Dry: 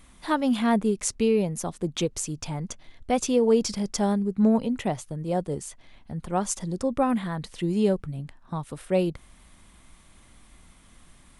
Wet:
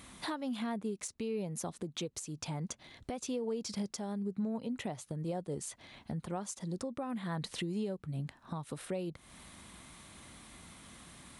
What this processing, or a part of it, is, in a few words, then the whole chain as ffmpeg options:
broadcast voice chain: -af "highpass=90,deesser=0.35,acompressor=threshold=-38dB:ratio=4,equalizer=f=4k:t=o:w=0.2:g=4,alimiter=level_in=7.5dB:limit=-24dB:level=0:latency=1:release=351,volume=-7.5dB,volume=3.5dB"

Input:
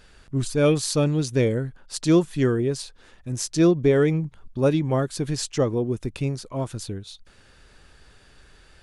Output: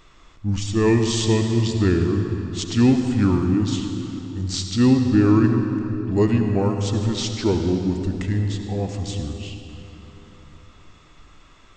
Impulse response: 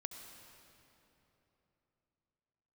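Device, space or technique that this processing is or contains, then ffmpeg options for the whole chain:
slowed and reverbed: -filter_complex "[0:a]asetrate=33075,aresample=44100[a];[1:a]atrim=start_sample=2205[b];[a][b]afir=irnorm=-1:irlink=0,volume=5dB"

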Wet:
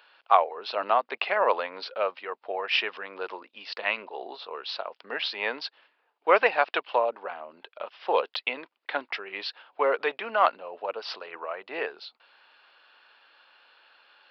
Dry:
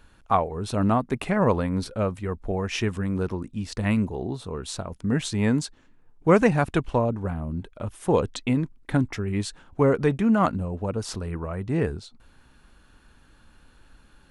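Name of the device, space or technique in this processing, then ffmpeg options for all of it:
musical greeting card: -af "aresample=11025,aresample=44100,highpass=f=550:w=0.5412,highpass=f=550:w=1.3066,equalizer=f=2.8k:t=o:w=0.56:g=6,volume=2.5dB"

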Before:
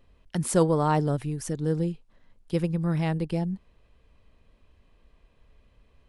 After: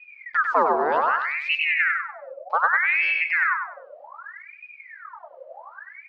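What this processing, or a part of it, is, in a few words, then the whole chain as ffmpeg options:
voice changer toy: -filter_complex "[0:a]aemphasis=mode=reproduction:type=riaa,aeval=exprs='val(0)*sin(2*PI*1500*n/s+1500*0.65/0.65*sin(2*PI*0.65*n/s))':c=same,highpass=480,equalizer=f=750:t=q:w=4:g=-4,equalizer=f=2.4k:t=q:w=4:g=-4,equalizer=f=3.5k:t=q:w=4:g=-9,lowpass=f=4.5k:w=0.5412,lowpass=f=4.5k:w=1.3066,asettb=1/sr,asplit=3[a][b][c];[a]atrim=end=0.924[d];[b]atrim=start=0.92:end=1.63,asetpts=PTS-STARTPTS,afade=t=in:d=0.004:c=qsin,afade=t=out:st=0.706:d=0.004:c=qsin,highshelf=f=2.5k:t=q:w=3:g=7[e];[c]atrim=start=1.626[f];[d][e]acrossfade=d=0.004:c1=hsin:c2=qsin[g];[g][f]acrossfade=d=0.004:c1=qsin:c2=hsin,aecho=1:1:97|194|291|388:0.562|0.152|0.041|0.0111"

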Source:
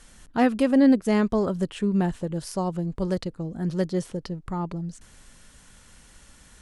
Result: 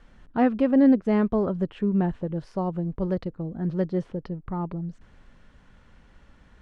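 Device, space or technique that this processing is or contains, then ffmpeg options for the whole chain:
phone in a pocket: -af "lowpass=3.5k,highshelf=f=2.3k:g=-10.5"

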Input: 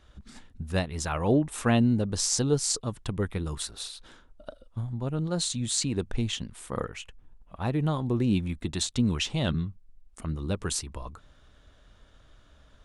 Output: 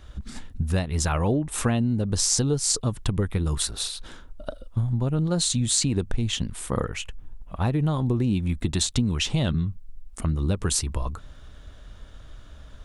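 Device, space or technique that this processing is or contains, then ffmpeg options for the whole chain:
ASMR close-microphone chain: -af "lowshelf=f=150:g=7,acompressor=threshold=-27dB:ratio=6,highshelf=f=9.5k:g=5,volume=7dB"

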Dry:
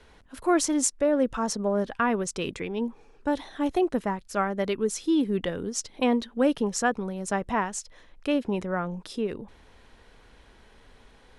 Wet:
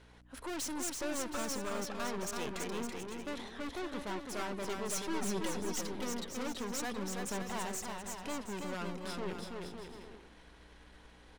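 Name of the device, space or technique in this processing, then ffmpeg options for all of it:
valve amplifier with mains hum: -filter_complex "[0:a]aeval=exprs='(tanh(63.1*val(0)+0.75)-tanh(0.75))/63.1':c=same,aeval=exprs='val(0)+0.00178*(sin(2*PI*60*n/s)+sin(2*PI*2*60*n/s)/2+sin(2*PI*3*60*n/s)/3+sin(2*PI*4*60*n/s)/4+sin(2*PI*5*60*n/s)/5)':c=same,lowshelf=f=260:g=-6.5,asettb=1/sr,asplit=3[a][b][c];[a]atrim=end=4.884[d];[b]atrim=start=4.88:end=5.46,asetpts=PTS-STARTPTS,afade=t=in:d=0.004:c=qsin,afade=t=out:st=0.576:d=0.004:c=qsin,aecho=1:1:5.4:0.94,atrim=end_sample=25578[e];[c]atrim=start=5.456[f];[d][e]acrossfade=d=0.004:c1=hsin:c2=qsin[g];[g][f]acrossfade=d=0.004:c1=qsin:c2=hsin,aecho=1:1:330|561|722.7|835.9|915.1:0.631|0.398|0.251|0.158|0.1"

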